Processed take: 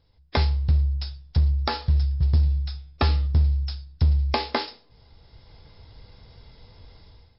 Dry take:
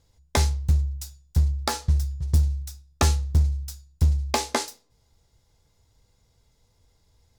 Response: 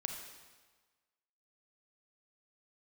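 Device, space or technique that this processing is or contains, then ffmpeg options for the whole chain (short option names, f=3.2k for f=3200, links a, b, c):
low-bitrate web radio: -filter_complex "[0:a]asettb=1/sr,asplit=3[a][b][c];[a]atrim=end=2.214[d];[b]atrim=start=2.21:end=3.27,asetpts=PTS-STARTPTS,afade=t=in:d=0.004:c=qsin,afade=t=out:st=1.056:d=0.004:c=qsin,bandreject=f=151:t=h:w=4,bandreject=f=302:t=h:w=4,bandreject=f=453:t=h:w=4,bandreject=f=604:t=h:w=4,bandreject=f=755:t=h:w=4,bandreject=f=906:t=h:w=4,bandreject=f=1.057k:t=h:w=4,bandreject=f=1.208k:t=h:w=4,bandreject=f=1.359k:t=h:w=4,bandreject=f=1.51k:t=h:w=4,bandreject=f=1.661k:t=h:w=4,bandreject=f=1.812k:t=h:w=4,bandreject=f=1.963k:t=h:w=4,bandreject=f=2.114k:t=h:w=4,bandreject=f=2.265k:t=h:w=4,bandreject=f=2.416k:t=h:w=4,bandreject=f=2.567k:t=h:w=4,bandreject=f=2.718k:t=h:w=4,bandreject=f=2.869k:t=h:w=4,bandreject=f=3.02k:t=h:w=4,bandreject=f=3.171k:t=h:w=4,bandreject=f=3.322k:t=h:w=4,bandreject=f=3.473k:t=h:w=4,bandreject=f=3.624k:t=h:w=4[e];[c]atrim=start=3.266[f];[d][e]acrossfade=d=0.004:c1=hsin:c2=qsin[g];[g][f]acrossfade=d=0.004:c1=qsin:c2=hsin,dynaudnorm=f=370:g=3:m=16.5dB,alimiter=limit=-12.5dB:level=0:latency=1:release=454" -ar 12000 -c:a libmp3lame -b:a 32k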